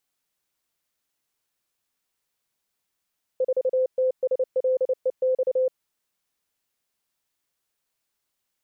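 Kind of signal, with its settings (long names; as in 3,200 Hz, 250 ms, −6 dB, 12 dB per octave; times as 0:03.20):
Morse code "4TSLEX" 29 words per minute 515 Hz −18.5 dBFS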